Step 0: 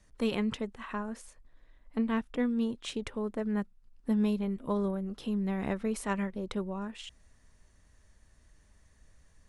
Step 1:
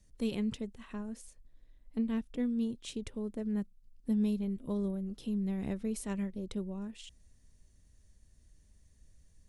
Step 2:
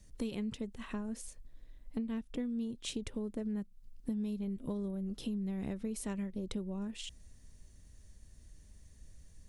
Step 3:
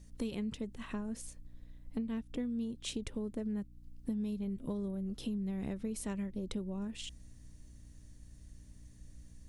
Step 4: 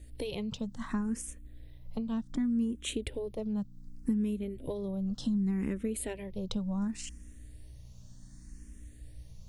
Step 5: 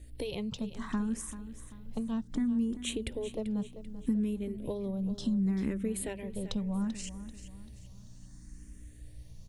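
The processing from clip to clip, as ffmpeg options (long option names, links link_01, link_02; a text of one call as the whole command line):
ffmpeg -i in.wav -af "equalizer=frequency=1200:width_type=o:width=2.4:gain=-14.5" out.wav
ffmpeg -i in.wav -af "acompressor=threshold=-41dB:ratio=6,volume=6dB" out.wav
ffmpeg -i in.wav -af "aeval=exprs='val(0)+0.00158*(sin(2*PI*60*n/s)+sin(2*PI*2*60*n/s)/2+sin(2*PI*3*60*n/s)/3+sin(2*PI*4*60*n/s)/4+sin(2*PI*5*60*n/s)/5)':channel_layout=same" out.wav
ffmpeg -i in.wav -filter_complex "[0:a]asplit=2[link_01][link_02];[link_02]afreqshift=0.67[link_03];[link_01][link_03]amix=inputs=2:normalize=1,volume=7.5dB" out.wav
ffmpeg -i in.wav -af "aecho=1:1:389|778|1167|1556:0.224|0.0895|0.0358|0.0143" out.wav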